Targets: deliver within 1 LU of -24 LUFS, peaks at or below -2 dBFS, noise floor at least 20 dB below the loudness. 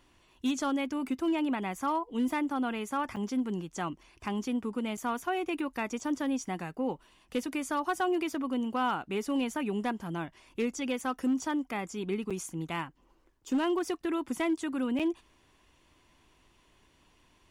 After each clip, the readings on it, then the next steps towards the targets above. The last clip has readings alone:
clipped samples 0.6%; clipping level -23.0 dBFS; dropouts 4; longest dropout 6.2 ms; loudness -32.5 LUFS; peak level -23.0 dBFS; loudness target -24.0 LUFS
-> clip repair -23 dBFS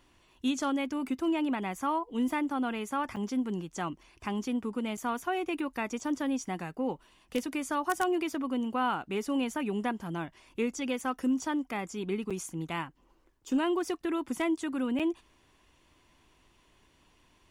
clipped samples 0.0%; dropouts 4; longest dropout 6.2 ms
-> interpolate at 3.16/4.97/12.30/14.99 s, 6.2 ms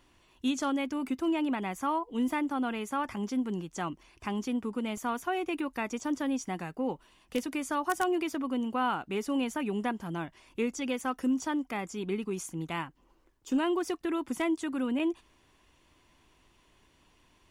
dropouts 0; loudness -32.5 LUFS; peak level -14.0 dBFS; loudness target -24.0 LUFS
-> trim +8.5 dB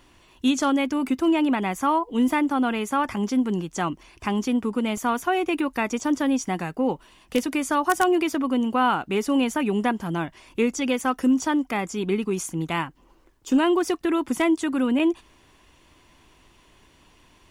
loudness -24.0 LUFS; peak level -5.5 dBFS; noise floor -57 dBFS

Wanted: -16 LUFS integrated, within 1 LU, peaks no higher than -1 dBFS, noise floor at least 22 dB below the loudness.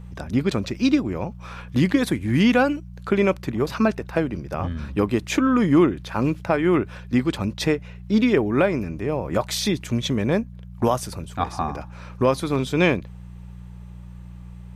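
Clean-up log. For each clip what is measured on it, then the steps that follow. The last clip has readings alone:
hum 60 Hz; highest harmonic 180 Hz; hum level -36 dBFS; loudness -22.5 LUFS; peak level -7.0 dBFS; loudness target -16.0 LUFS
-> de-hum 60 Hz, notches 3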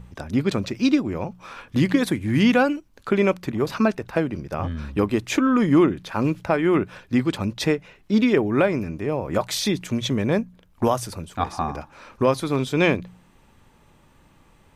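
hum not found; loudness -22.5 LUFS; peak level -6.5 dBFS; loudness target -16.0 LUFS
-> trim +6.5 dB; peak limiter -1 dBFS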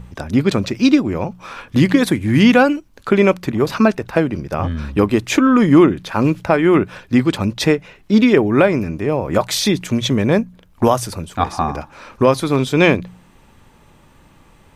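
loudness -16.5 LUFS; peak level -1.0 dBFS; noise floor -50 dBFS

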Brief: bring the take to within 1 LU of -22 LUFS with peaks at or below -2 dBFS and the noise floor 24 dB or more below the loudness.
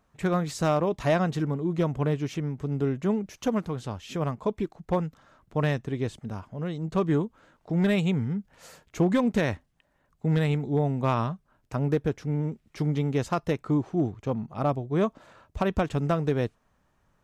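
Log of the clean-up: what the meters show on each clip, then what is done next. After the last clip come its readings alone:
clipped samples 0.3%; clipping level -16.0 dBFS; loudness -28.0 LUFS; peak level -16.0 dBFS; loudness target -22.0 LUFS
-> clip repair -16 dBFS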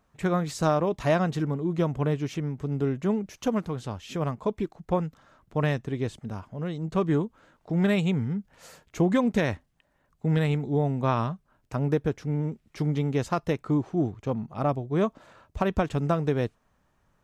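clipped samples 0.0%; loudness -28.0 LUFS; peak level -10.5 dBFS; loudness target -22.0 LUFS
-> trim +6 dB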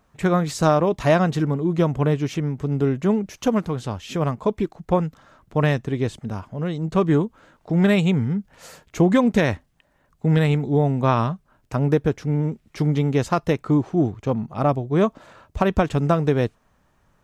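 loudness -22.0 LUFS; peak level -4.5 dBFS; noise floor -64 dBFS

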